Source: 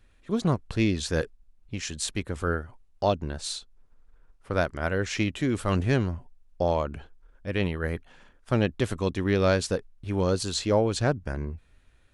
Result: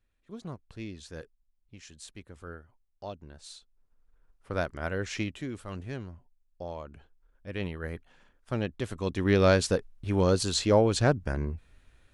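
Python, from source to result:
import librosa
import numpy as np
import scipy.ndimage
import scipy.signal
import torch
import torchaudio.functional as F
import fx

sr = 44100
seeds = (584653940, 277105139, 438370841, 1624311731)

y = fx.gain(x, sr, db=fx.line((3.24, -16.0), (4.52, -5.0), (5.18, -5.0), (5.67, -14.0), (6.75, -14.0), (7.64, -7.0), (8.91, -7.0), (9.31, 1.0)))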